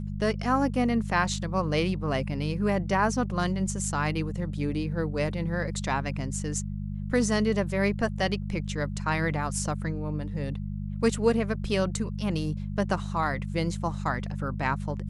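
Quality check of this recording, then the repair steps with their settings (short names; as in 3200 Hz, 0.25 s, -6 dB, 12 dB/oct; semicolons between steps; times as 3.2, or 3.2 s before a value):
hum 50 Hz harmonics 4 -33 dBFS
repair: de-hum 50 Hz, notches 4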